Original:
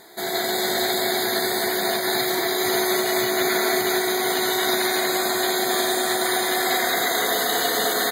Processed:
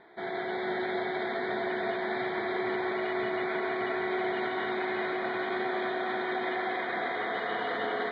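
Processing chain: Chebyshev low-pass 3 kHz, order 4; peak limiter -19 dBFS, peak gain reduction 7 dB; echo whose repeats swap between lows and highs 159 ms, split 830 Hz, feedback 89%, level -6 dB; trim -6 dB

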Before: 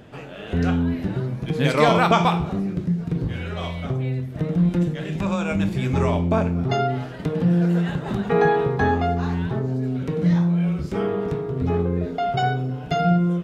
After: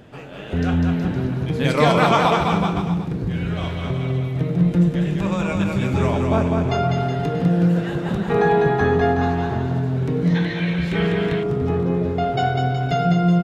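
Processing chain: bouncing-ball echo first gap 200 ms, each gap 0.85×, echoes 5; time-frequency box 10.35–11.43 s, 1.5–4.4 kHz +12 dB

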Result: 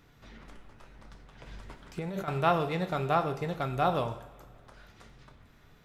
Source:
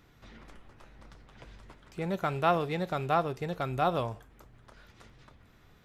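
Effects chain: two-slope reverb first 0.64 s, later 2.4 s, from -18 dB, DRR 7 dB; 1.46–2.28 s: compressor with a negative ratio -35 dBFS, ratio -1

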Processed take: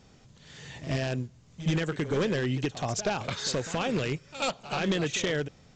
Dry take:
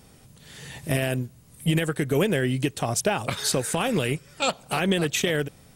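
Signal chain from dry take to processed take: wavefolder -16 dBFS; pre-echo 76 ms -13 dB; trim -4 dB; µ-law 128 kbps 16 kHz

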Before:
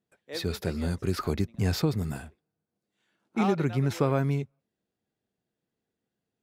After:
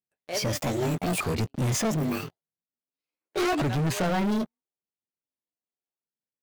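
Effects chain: sawtooth pitch modulation +11.5 st, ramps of 1205 ms; waveshaping leveller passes 5; trim -9 dB

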